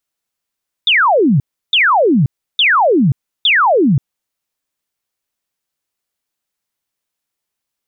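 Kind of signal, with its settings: burst of laser zaps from 3.7 kHz, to 120 Hz, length 0.53 s sine, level -8 dB, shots 4, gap 0.33 s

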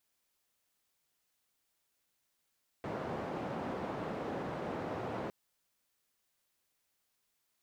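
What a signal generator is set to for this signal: noise band 120–680 Hz, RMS -39 dBFS 2.46 s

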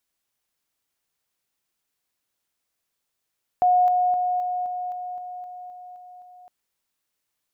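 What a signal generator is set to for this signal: level ladder 724 Hz -14.5 dBFS, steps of -3 dB, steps 11, 0.26 s 0.00 s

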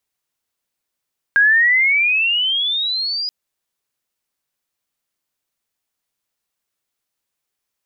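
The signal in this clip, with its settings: gliding synth tone sine, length 1.93 s, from 1.61 kHz, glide +19.5 st, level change -11 dB, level -9 dB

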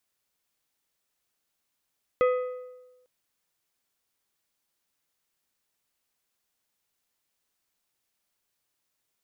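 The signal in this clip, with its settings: metal hit plate, length 0.85 s, lowest mode 502 Hz, decay 1.14 s, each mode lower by 8 dB, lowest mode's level -17.5 dB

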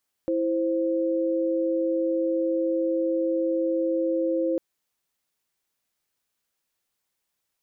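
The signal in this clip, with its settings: chord E4/C5 sine, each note -24.5 dBFS 4.30 s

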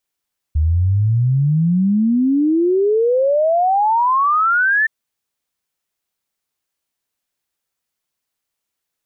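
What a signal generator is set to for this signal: log sweep 74 Hz -> 1.8 kHz 4.32 s -12 dBFS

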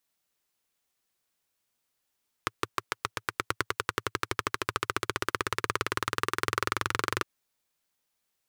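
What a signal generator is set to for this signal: single-cylinder engine model, changing speed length 4.76 s, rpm 700, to 2800, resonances 110/390/1200 Hz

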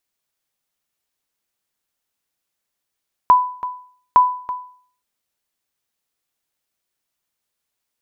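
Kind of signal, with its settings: sonar ping 997 Hz, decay 0.51 s, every 0.86 s, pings 2, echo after 0.33 s, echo -15 dB -4 dBFS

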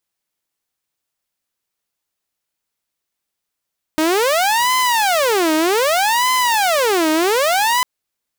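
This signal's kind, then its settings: siren wail 311–1020 Hz 0.64 per s saw -11 dBFS 3.85 s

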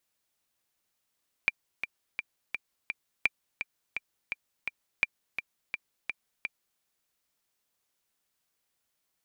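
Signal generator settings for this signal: metronome 169 bpm, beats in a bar 5, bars 3, 2.37 kHz, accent 9 dB -10 dBFS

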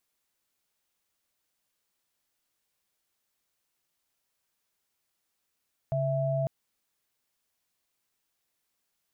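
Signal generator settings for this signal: chord C#3/E5 sine, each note -28 dBFS 0.55 s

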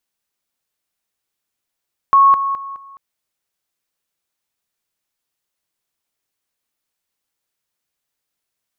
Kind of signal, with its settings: level ladder 1.1 kHz -6.5 dBFS, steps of -10 dB, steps 4, 0.21 s 0.00 s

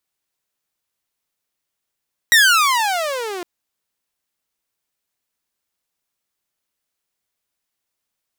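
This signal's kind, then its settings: gliding synth tone saw, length 1.11 s, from 1.93 kHz, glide -30 st, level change -18.5 dB, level -5 dB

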